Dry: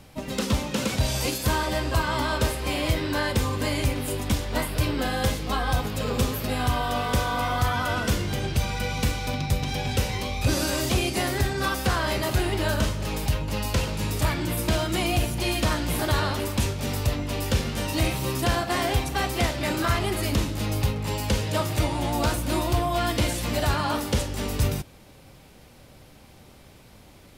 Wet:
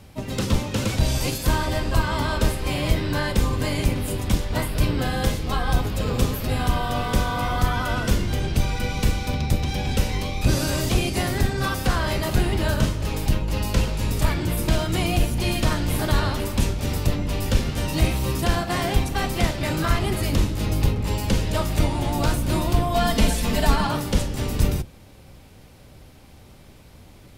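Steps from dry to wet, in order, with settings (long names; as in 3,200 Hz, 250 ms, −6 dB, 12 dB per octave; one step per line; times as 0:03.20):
sub-octave generator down 1 octave, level +3 dB
0:22.94–0:23.87: comb filter 4.5 ms, depth 93%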